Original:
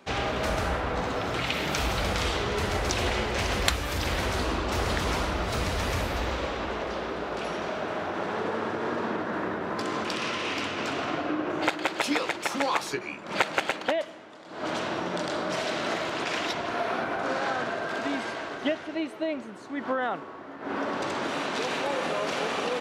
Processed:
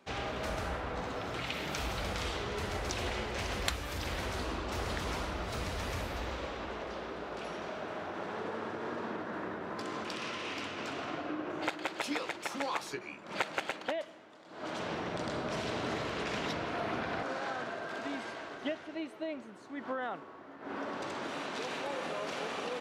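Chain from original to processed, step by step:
0:14.68–0:17.23: delay with pitch and tempo change per echo 108 ms, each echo −6 semitones, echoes 3
level −8.5 dB

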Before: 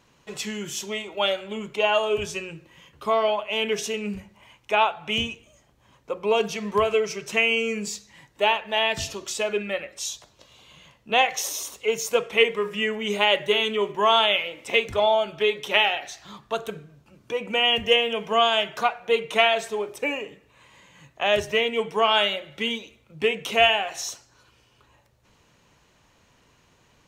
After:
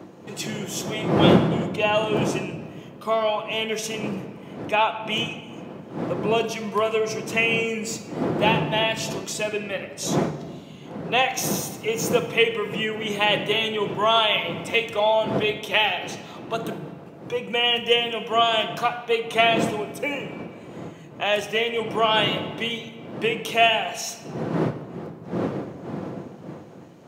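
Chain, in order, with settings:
wind on the microphone 400 Hz −29 dBFS
high-pass filter 120 Hz 24 dB per octave
high-shelf EQ 12,000 Hz +7.5 dB
rectangular room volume 2,300 cubic metres, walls mixed, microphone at 0.76 metres
level −1 dB

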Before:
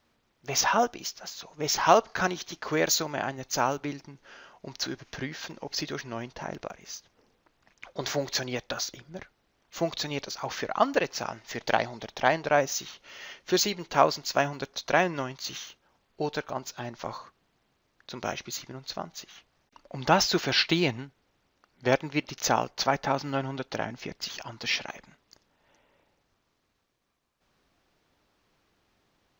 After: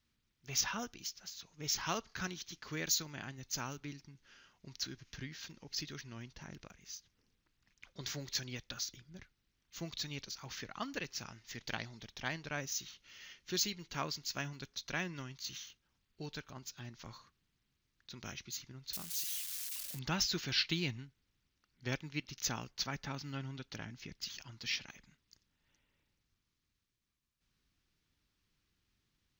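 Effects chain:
0:18.93–0:19.99: spike at every zero crossing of −25 dBFS
guitar amp tone stack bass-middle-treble 6-0-2
level +8 dB

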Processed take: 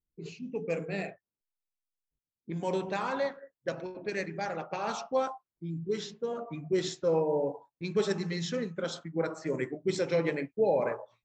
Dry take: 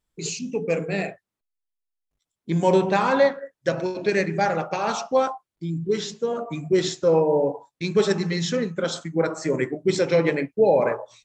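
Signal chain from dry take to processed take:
0:02.50–0:04.73: harmonic and percussive parts rebalanced harmonic −5 dB
low-pass that shuts in the quiet parts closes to 400 Hz, open at −20 dBFS
level −8.5 dB

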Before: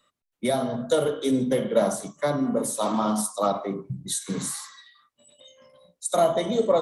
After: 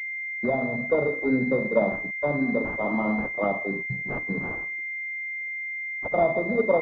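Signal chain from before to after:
dead-zone distortion −46 dBFS
switching amplifier with a slow clock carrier 2,100 Hz

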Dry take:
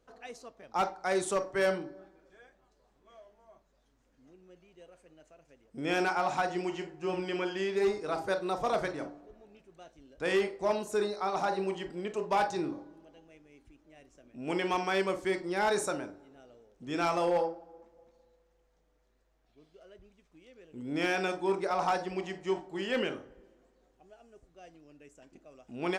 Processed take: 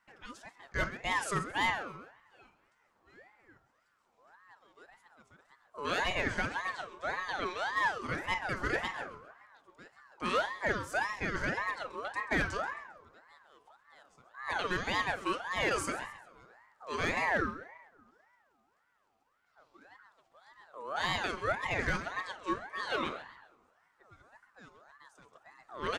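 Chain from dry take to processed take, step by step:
repeating echo 133 ms, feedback 38%, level −15 dB
ring modulator whose carrier an LFO sweeps 1,100 Hz, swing 35%, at 1.8 Hz

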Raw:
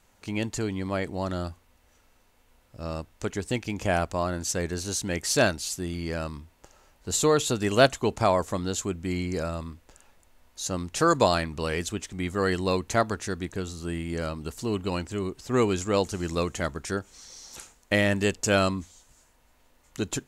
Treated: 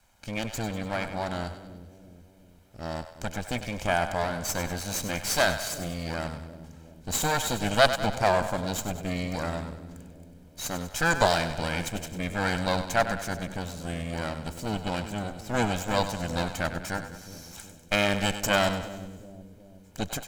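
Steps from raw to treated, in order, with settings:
lower of the sound and its delayed copy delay 1.3 ms
echo with a time of its own for lows and highs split 490 Hz, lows 367 ms, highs 98 ms, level −10.5 dB

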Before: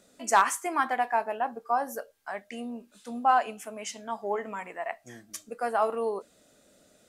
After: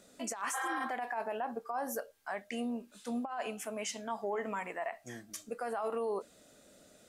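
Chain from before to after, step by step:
healed spectral selection 0:00.56–0:00.79, 360–5,700 Hz after
compressor whose output falls as the input rises −27 dBFS, ratio −0.5
brickwall limiter −25.5 dBFS, peak gain reduction 10 dB
level −1.5 dB

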